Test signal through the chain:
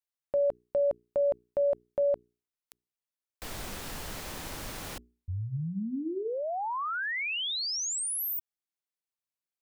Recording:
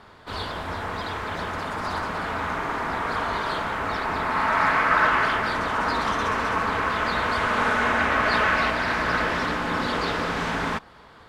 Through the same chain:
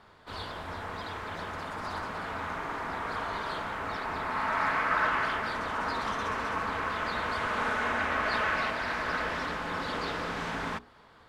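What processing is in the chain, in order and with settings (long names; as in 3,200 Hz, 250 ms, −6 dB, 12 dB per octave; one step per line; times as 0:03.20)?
mains-hum notches 60/120/180/240/300/360/420 Hz
level −7.5 dB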